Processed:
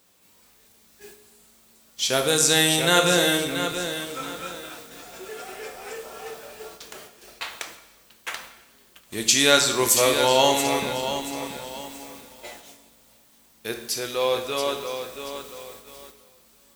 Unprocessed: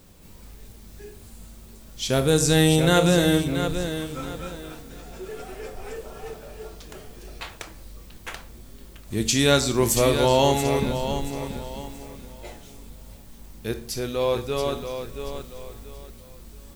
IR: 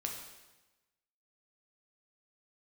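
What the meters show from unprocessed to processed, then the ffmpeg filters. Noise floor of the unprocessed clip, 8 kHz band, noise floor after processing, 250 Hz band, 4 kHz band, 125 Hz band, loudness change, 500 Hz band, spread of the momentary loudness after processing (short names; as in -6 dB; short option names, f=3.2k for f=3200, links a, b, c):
-46 dBFS, +5.5 dB, -57 dBFS, -5.0 dB, +5.0 dB, -10.5 dB, +1.0 dB, -1.0 dB, 22 LU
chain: -filter_complex "[0:a]highpass=f=900:p=1,agate=range=-9dB:threshold=-49dB:ratio=16:detection=peak,asplit=2[a][b];[1:a]atrim=start_sample=2205[c];[b][c]afir=irnorm=-1:irlink=0,volume=-0.5dB[d];[a][d]amix=inputs=2:normalize=0"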